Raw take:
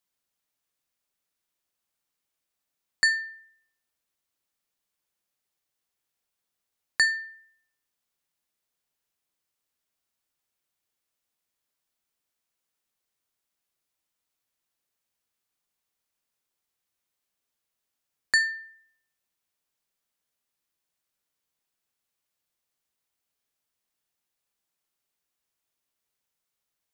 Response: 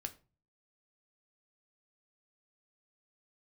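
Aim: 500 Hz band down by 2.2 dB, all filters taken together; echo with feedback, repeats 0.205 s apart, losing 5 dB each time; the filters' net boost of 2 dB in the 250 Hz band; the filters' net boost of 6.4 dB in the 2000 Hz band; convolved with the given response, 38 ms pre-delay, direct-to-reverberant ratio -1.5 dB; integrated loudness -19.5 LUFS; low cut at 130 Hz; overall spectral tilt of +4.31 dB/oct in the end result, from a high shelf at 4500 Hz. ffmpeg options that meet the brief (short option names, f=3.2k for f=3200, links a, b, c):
-filter_complex "[0:a]highpass=130,equalizer=f=250:t=o:g=4.5,equalizer=f=500:t=o:g=-4.5,equalizer=f=2k:t=o:g=6.5,highshelf=f=4.5k:g=5.5,aecho=1:1:205|410|615|820|1025|1230|1435:0.562|0.315|0.176|0.0988|0.0553|0.031|0.0173,asplit=2[a][b];[1:a]atrim=start_sample=2205,adelay=38[c];[b][c]afir=irnorm=-1:irlink=0,volume=4dB[d];[a][d]amix=inputs=2:normalize=0,volume=-4dB"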